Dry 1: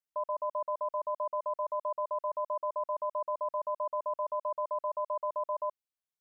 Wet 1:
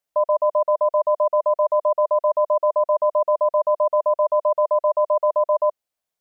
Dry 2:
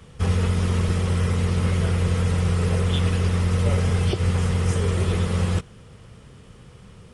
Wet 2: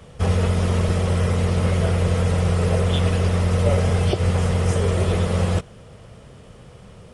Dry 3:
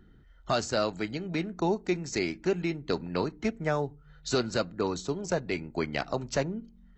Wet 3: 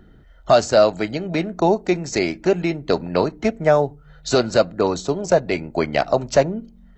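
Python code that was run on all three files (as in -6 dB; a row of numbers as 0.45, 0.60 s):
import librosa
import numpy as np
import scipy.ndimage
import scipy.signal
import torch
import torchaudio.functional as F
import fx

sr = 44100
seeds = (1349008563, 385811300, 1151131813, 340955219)

y = fx.peak_eq(x, sr, hz=630.0, db=9.0, octaves=0.69)
y = y * 10.0 ** (-20 / 20.0) / np.sqrt(np.mean(np.square(y)))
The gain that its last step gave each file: +8.0, +1.5, +7.5 dB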